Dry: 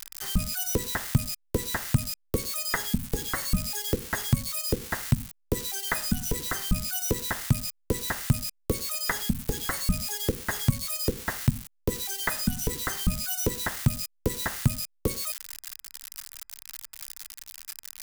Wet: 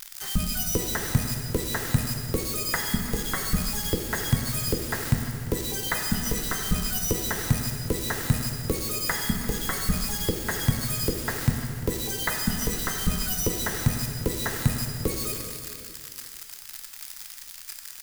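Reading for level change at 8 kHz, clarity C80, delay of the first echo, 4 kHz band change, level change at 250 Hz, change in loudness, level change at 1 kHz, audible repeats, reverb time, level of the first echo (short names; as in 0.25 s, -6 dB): +2.0 dB, 4.0 dB, 0.346 s, +2.0 dB, +2.0 dB, +2.0 dB, +2.0 dB, 1, 2.3 s, -16.0 dB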